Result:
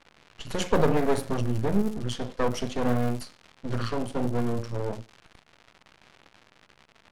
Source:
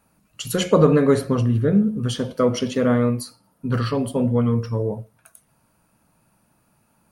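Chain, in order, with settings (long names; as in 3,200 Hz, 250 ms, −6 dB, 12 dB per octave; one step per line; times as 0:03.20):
surface crackle 380 per second −31 dBFS
high-shelf EQ 8,700 Hz +5.5 dB
half-wave rectification
low-pass that shuts in the quiet parts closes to 3,000 Hz, open at −16.5 dBFS
level −2.5 dB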